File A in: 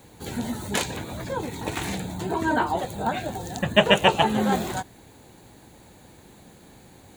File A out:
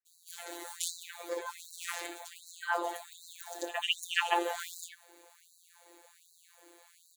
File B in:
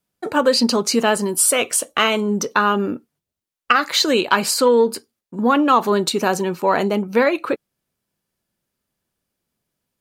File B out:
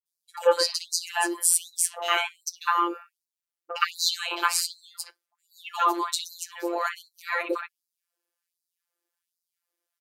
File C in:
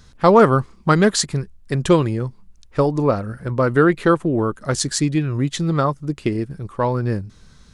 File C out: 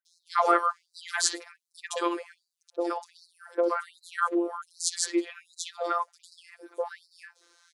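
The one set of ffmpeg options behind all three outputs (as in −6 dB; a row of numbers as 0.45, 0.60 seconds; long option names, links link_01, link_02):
-filter_complex "[0:a]acrossover=split=720|3400[link_01][link_02][link_03];[link_03]adelay=60[link_04];[link_02]adelay=120[link_05];[link_01][link_05][link_04]amix=inputs=3:normalize=0,afftfilt=real='hypot(re,im)*cos(PI*b)':imag='0':win_size=1024:overlap=0.75,afftfilt=real='re*gte(b*sr/1024,270*pow(3900/270,0.5+0.5*sin(2*PI*1.3*pts/sr)))':imag='im*gte(b*sr/1024,270*pow(3900/270,0.5+0.5*sin(2*PI*1.3*pts/sr)))':win_size=1024:overlap=0.75,volume=-1dB"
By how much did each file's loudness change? −11.0, −8.0, −10.5 LU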